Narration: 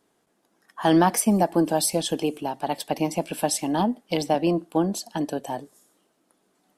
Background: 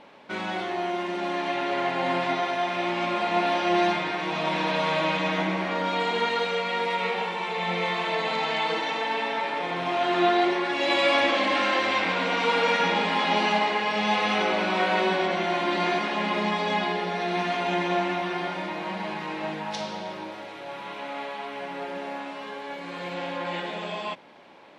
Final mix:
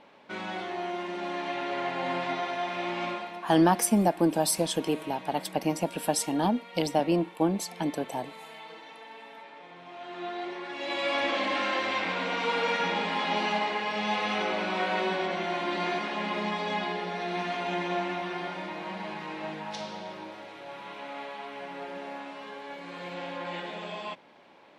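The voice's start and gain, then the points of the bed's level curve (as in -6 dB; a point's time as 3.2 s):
2.65 s, -3.0 dB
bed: 3.09 s -5 dB
3.41 s -19 dB
9.87 s -19 dB
11.35 s -5 dB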